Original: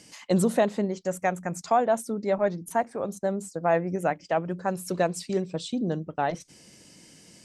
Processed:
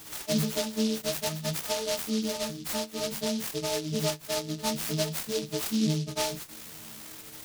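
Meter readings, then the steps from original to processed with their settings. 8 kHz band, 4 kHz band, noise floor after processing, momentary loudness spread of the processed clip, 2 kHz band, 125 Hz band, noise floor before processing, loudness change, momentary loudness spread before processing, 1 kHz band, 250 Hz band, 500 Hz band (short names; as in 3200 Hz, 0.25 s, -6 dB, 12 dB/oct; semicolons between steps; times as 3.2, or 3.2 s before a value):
+6.5 dB, +11.0 dB, -46 dBFS, 11 LU, -4.0 dB, -1.0 dB, -54 dBFS, -2.5 dB, 7 LU, -11.0 dB, -1.5 dB, -6.5 dB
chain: frequency quantiser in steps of 6 st; compressor 5:1, threshold -27 dBFS, peak gain reduction 12 dB; low shelf 300 Hz +9.5 dB; chorus 0.55 Hz, delay 15.5 ms, depth 7.6 ms; noise-modulated delay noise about 4300 Hz, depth 0.16 ms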